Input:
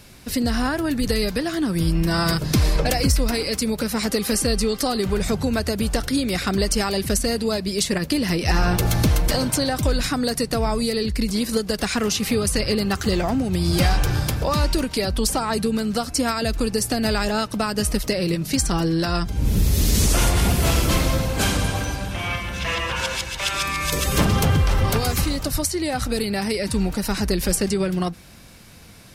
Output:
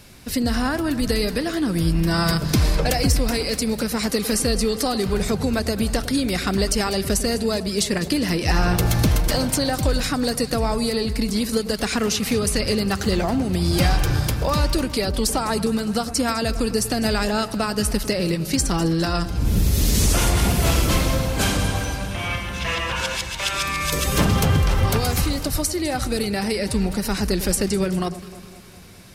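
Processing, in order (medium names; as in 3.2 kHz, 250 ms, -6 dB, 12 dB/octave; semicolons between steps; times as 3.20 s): echo whose repeats swap between lows and highs 102 ms, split 1.1 kHz, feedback 76%, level -13.5 dB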